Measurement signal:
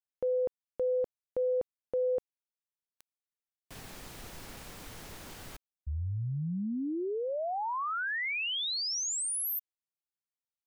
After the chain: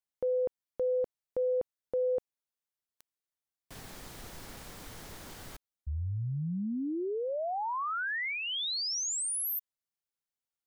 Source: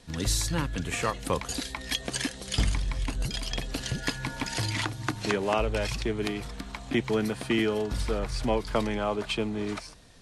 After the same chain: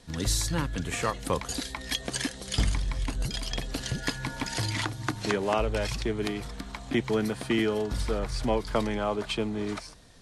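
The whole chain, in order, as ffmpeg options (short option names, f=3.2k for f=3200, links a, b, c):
-af "equalizer=f=2.6k:t=o:w=0.35:g=-3"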